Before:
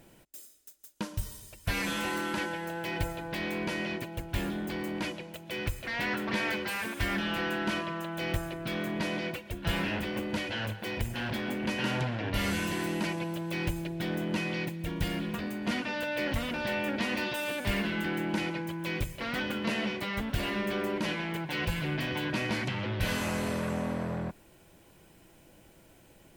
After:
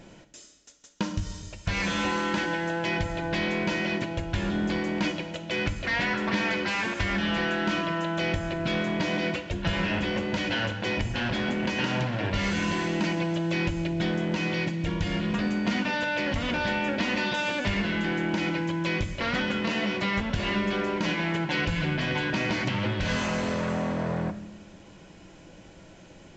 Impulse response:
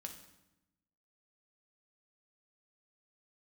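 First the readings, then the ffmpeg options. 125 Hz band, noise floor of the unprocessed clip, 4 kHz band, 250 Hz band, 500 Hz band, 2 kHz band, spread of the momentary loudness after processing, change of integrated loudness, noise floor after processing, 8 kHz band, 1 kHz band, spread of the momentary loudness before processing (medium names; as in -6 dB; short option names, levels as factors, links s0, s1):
+5.0 dB, -58 dBFS, +4.5 dB, +5.0 dB, +4.5 dB, +5.0 dB, 3 LU, +5.0 dB, -50 dBFS, +1.5 dB, +5.0 dB, 5 LU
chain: -filter_complex "[0:a]acompressor=threshold=0.0251:ratio=6,asplit=2[s0][s1];[1:a]atrim=start_sample=2205[s2];[s1][s2]afir=irnorm=-1:irlink=0,volume=2.24[s3];[s0][s3]amix=inputs=2:normalize=0,volume=1.12" -ar 16000 -c:a pcm_mulaw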